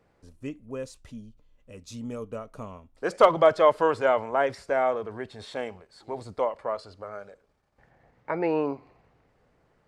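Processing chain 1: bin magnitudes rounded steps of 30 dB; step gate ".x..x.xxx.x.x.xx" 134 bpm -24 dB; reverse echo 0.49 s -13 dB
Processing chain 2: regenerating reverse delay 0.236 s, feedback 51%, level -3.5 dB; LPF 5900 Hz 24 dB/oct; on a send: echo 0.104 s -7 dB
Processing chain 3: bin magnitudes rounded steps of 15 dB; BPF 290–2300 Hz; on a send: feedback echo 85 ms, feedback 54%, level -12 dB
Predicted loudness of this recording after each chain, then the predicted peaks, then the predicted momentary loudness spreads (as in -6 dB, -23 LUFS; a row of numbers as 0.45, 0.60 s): -29.0, -23.5, -26.0 LUFS; -6.5, -4.5, -5.0 dBFS; 21, 22, 22 LU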